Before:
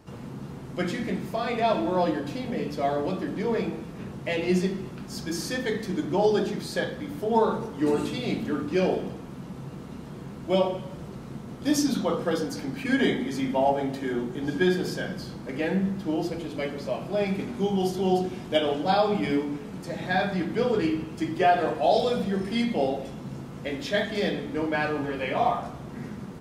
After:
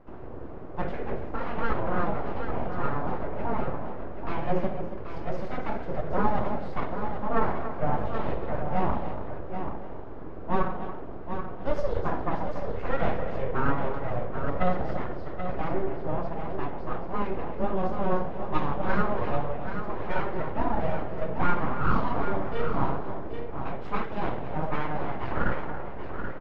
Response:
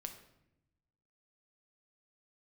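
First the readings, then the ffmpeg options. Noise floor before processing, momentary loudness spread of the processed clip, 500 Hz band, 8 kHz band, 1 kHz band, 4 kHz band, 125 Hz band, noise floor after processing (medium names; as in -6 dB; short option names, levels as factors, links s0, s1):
-40 dBFS, 9 LU, -5.0 dB, under -25 dB, -0.5 dB, -15.0 dB, -0.5 dB, -35 dBFS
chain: -filter_complex "[0:a]asplit=2[s0][s1];[s1]aecho=0:1:281:0.266[s2];[s0][s2]amix=inputs=2:normalize=0,aeval=exprs='abs(val(0))':c=same,lowpass=1300,asplit=2[s3][s4];[s4]aecho=0:1:782:0.398[s5];[s3][s5]amix=inputs=2:normalize=0,volume=1.19"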